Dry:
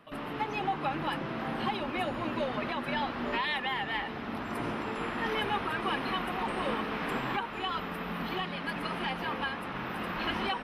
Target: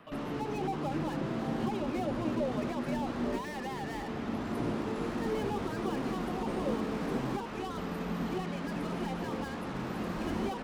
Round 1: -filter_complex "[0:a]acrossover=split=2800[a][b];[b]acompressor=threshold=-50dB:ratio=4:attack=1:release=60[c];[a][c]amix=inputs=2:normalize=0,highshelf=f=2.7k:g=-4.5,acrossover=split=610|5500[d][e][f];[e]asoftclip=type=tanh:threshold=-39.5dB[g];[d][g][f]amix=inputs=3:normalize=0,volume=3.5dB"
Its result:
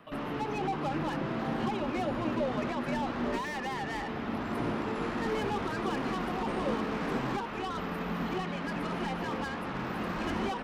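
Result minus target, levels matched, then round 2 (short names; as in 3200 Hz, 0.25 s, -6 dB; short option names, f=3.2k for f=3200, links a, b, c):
soft clip: distortion -4 dB
-filter_complex "[0:a]acrossover=split=2800[a][b];[b]acompressor=threshold=-50dB:ratio=4:attack=1:release=60[c];[a][c]amix=inputs=2:normalize=0,highshelf=f=2.7k:g=-4.5,acrossover=split=610|5500[d][e][f];[e]asoftclip=type=tanh:threshold=-47.5dB[g];[d][g][f]amix=inputs=3:normalize=0,volume=3.5dB"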